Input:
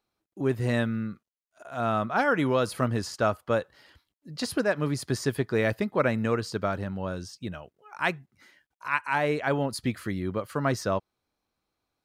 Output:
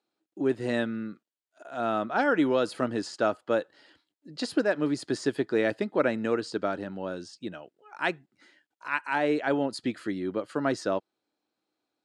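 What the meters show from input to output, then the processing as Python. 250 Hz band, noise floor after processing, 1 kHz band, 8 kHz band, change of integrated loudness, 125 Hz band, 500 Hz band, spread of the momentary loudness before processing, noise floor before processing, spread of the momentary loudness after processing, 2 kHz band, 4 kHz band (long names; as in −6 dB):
+0.5 dB, below −85 dBFS, −2.0 dB, −5.0 dB, −0.5 dB, −10.5 dB, 0.0 dB, 12 LU, below −85 dBFS, 14 LU, −1.5 dB, −1.0 dB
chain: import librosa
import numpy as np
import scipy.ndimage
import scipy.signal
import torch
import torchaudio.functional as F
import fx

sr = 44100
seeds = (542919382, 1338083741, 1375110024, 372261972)

y = fx.cabinet(x, sr, low_hz=240.0, low_slope=12, high_hz=8200.0, hz=(310.0, 1100.0, 2200.0, 5900.0), db=(7, -6, -4, -6))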